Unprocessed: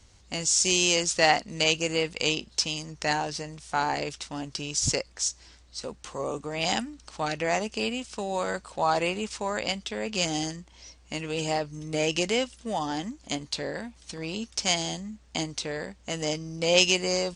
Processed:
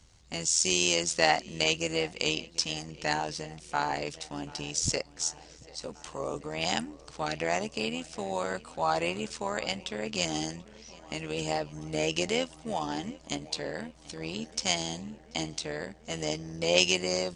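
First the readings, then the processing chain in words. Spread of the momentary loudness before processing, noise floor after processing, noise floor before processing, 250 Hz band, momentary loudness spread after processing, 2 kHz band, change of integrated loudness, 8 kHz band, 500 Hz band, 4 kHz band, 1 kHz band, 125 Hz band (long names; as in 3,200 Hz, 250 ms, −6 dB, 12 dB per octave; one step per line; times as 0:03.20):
14 LU, −54 dBFS, −56 dBFS, −3.0 dB, 14 LU, −3.0 dB, −3.0 dB, −3.0 dB, −3.0 dB, −3.0 dB, −3.0 dB, −3.0 dB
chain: on a send: feedback echo with a low-pass in the loop 738 ms, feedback 73%, low-pass 3,700 Hz, level −21 dB
on the sum: amplitude modulation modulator 81 Hz, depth 50%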